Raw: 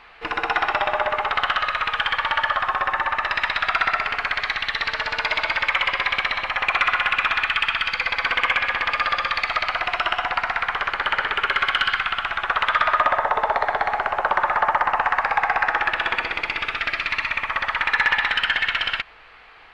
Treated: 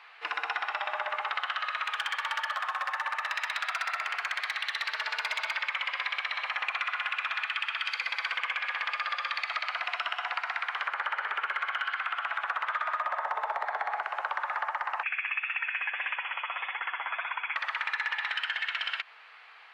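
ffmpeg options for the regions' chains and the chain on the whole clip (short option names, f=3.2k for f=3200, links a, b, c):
-filter_complex "[0:a]asettb=1/sr,asplit=3[a][b][c];[a]atrim=end=1.854[d];[b]atrim=start=1.85:end=5.51,asetpts=PTS-STARTPTS,afade=t=in:d=0.004:c=qsin,afade=t=out:st=3.656:d=0.004:c=qsin,highpass=f=330:w=0.5412,highpass=f=330:w=1.3066,volume=15.5dB,asoftclip=hard,volume=-15.5dB[e];[c]atrim=start=5.506[f];[d][e]acrossfade=d=0.004:c1=hsin:c2=qsin[g];[g][f]acrossfade=d=0.004:c1=qsin:c2=hsin,asettb=1/sr,asplit=3[h][i][j];[h]atrim=end=7.854[k];[i]atrim=start=7.85:end=8.37,asetpts=PTS-STARTPTS,afade=t=in:d=0.004:c=qsin,afade=t=out:st=0.516:d=0.004:c=qsin,highpass=250,highshelf=f=5.1k:g=7.5[l];[j]atrim=start=8.366[m];[k][l]acrossfade=d=0.004:c1=hsin:c2=qsin[n];[n][m]acrossfade=d=0.004:c1=qsin:c2=hsin,asettb=1/sr,asplit=3[o][p][q];[o]atrim=end=10.864[r];[p]atrim=start=10.86:end=14.03,asetpts=PTS-STARTPTS,afade=t=in:d=0.004:c=qsin,afade=t=out:st=3.166:d=0.004:c=qsin,aeval=exprs='clip(val(0),-1,0.178)':c=same,equalizer=f=670:w=0.41:g=5,acrossover=split=2600[s][t];[t]acompressor=threshold=-38dB:ratio=4:attack=1:release=60[u];[s][u]amix=inputs=2:normalize=0[v];[q]atrim=start=14.026[w];[r][v]acrossfade=d=0.004:c1=hsin:c2=qsin[x];[x][w]acrossfade=d=0.004:c1=qsin:c2=hsin,asettb=1/sr,asplit=3[y][z][aa];[y]atrim=end=15.034[ab];[z]atrim=start=15.03:end=17.56,asetpts=PTS-STARTPTS,afade=t=in:d=0.004:c=qsin,afade=t=out:st=2.526:d=0.004:c=qsin,equalizer=f=910:t=o:w=0.35:g=6,lowpass=f=2.9k:t=q:w=0.5098,lowpass=f=2.9k:t=q:w=0.6013,lowpass=f=2.9k:t=q:w=0.9,lowpass=f=2.9k:t=q:w=2.563,afreqshift=-3400,flanger=delay=2.1:depth=7.5:regen=22:speed=1.7:shape=sinusoidal[ac];[aa]atrim=start=17.556[ad];[ab][ac]acrossfade=d=0.004:c1=hsin:c2=qsin[ae];[ae][ad]acrossfade=d=0.004:c1=qsin:c2=hsin,highpass=840,acompressor=threshold=-24dB:ratio=6,volume=-4dB"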